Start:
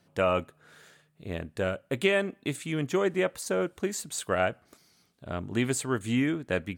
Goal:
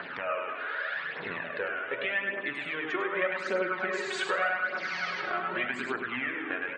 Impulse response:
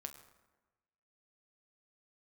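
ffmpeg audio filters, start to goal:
-filter_complex "[0:a]aeval=exprs='val(0)+0.5*0.0168*sgn(val(0))':channel_layout=same,highpass=350,aecho=1:1:102|204|306|408:0.631|0.221|0.0773|0.0271,dynaudnorm=framelen=160:gausssize=7:maxgain=8dB,lowpass=3000,equalizer=frequency=1700:width=0.89:gain=14.5,acompressor=threshold=-37dB:ratio=3,asettb=1/sr,asplit=3[link_01][link_02][link_03];[link_01]atrim=end=3.124[link_04];[link_02]atrim=start=3.12:end=5.66,asetpts=PTS-STARTPTS,afade=type=in:duration=0.004:curve=qsin,afade=type=out:start_time=2.536:duration=0.004:curve=qsin,aecho=1:1:5.4:0.92,atrim=end_sample=112014[link_05];[link_03]atrim=start=5.656[link_06];[link_04][link_05]acrossfade=duration=0.004:curve1=hsin:curve2=qsin[link_07];[link_07][link_06]acrossfade=duration=0.004:curve1=qsin:curve2=hsin[link_08];[1:a]atrim=start_sample=2205,asetrate=22050,aresample=44100[link_09];[link_08][link_09]afir=irnorm=-1:irlink=0,flanger=delay=0.1:depth=2.8:regen=16:speed=0.84:shape=triangular,afftfilt=real='re*gte(hypot(re,im),0.00158)':imag='im*gte(hypot(re,im),0.00158)':win_size=1024:overlap=0.75,volume=4.5dB"

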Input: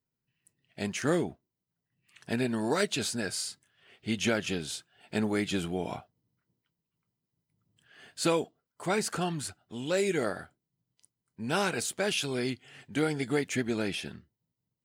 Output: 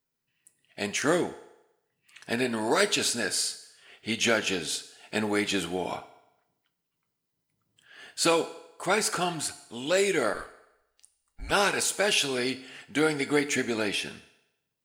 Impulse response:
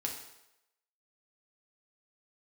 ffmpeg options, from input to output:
-filter_complex "[0:a]asplit=3[link_01][link_02][link_03];[link_01]afade=type=out:start_time=10.33:duration=0.02[link_04];[link_02]afreqshift=-180,afade=type=in:start_time=10.33:duration=0.02,afade=type=out:start_time=11.5:duration=0.02[link_05];[link_03]afade=type=in:start_time=11.5:duration=0.02[link_06];[link_04][link_05][link_06]amix=inputs=3:normalize=0,equalizer=frequency=100:width_type=o:width=2.7:gain=-10,asplit=2[link_07][link_08];[1:a]atrim=start_sample=2205,lowshelf=frequency=370:gain=-5.5[link_09];[link_08][link_09]afir=irnorm=-1:irlink=0,volume=-6dB[link_10];[link_07][link_10]amix=inputs=2:normalize=0,volume=3dB"

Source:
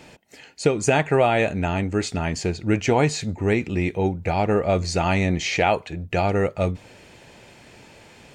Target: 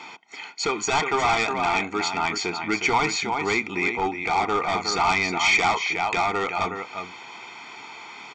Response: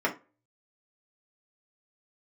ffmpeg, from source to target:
-filter_complex "[0:a]lowpass=frequency=2300:poles=1,asplit=2[link_01][link_02];[link_02]acompressor=threshold=-33dB:ratio=6,volume=-2.5dB[link_03];[link_01][link_03]amix=inputs=2:normalize=0,highpass=640,aecho=1:1:363:0.376,aresample=16000,volume=23dB,asoftclip=hard,volume=-23dB,aresample=44100,aecho=1:1:0.9:0.97,volume=5dB"

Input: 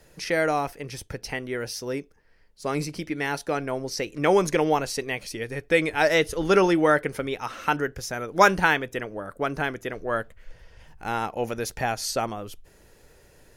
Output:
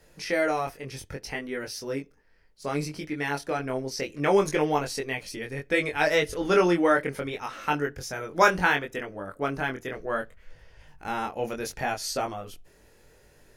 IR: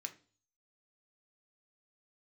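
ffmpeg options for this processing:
-filter_complex "[0:a]flanger=delay=20:depth=3:speed=0.66,asplit=2[link_01][link_02];[1:a]atrim=start_sample=2205,lowpass=5000[link_03];[link_02][link_03]afir=irnorm=-1:irlink=0,volume=-13.5dB[link_04];[link_01][link_04]amix=inputs=2:normalize=0"

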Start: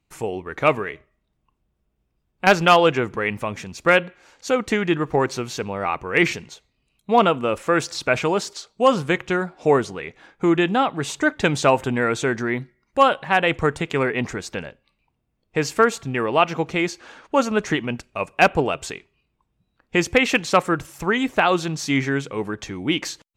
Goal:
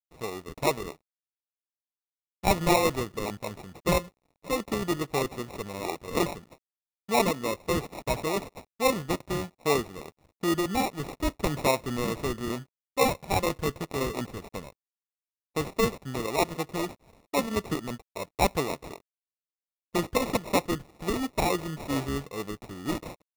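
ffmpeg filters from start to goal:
ffmpeg -i in.wav -af "acrusher=samples=28:mix=1:aa=0.000001,aeval=exprs='sgn(val(0))*max(abs(val(0))-0.00355,0)':channel_layout=same,volume=-8dB" out.wav

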